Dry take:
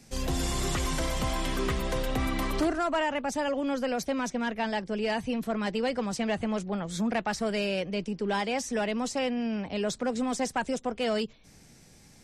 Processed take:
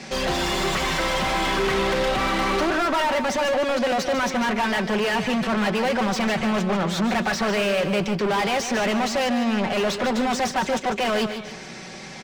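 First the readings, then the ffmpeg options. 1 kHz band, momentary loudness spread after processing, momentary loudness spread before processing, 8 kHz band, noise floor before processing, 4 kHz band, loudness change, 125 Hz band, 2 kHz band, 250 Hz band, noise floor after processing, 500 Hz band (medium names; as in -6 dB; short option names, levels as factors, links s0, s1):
+9.5 dB, 2 LU, 3 LU, +5.0 dB, -55 dBFS, +9.5 dB, +7.5 dB, +4.5 dB, +10.5 dB, +6.0 dB, -38 dBFS, +7.0 dB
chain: -filter_complex "[0:a]lowpass=5500,aecho=1:1:5.3:0.55,asplit=2[s0][s1];[s1]highpass=f=720:p=1,volume=35.5,asoftclip=type=tanh:threshold=0.158[s2];[s0][s2]amix=inputs=2:normalize=0,lowpass=f=2700:p=1,volume=0.501,asplit=2[s3][s4];[s4]aecho=0:1:148|296|444|592:0.335|0.124|0.0459|0.017[s5];[s3][s5]amix=inputs=2:normalize=0"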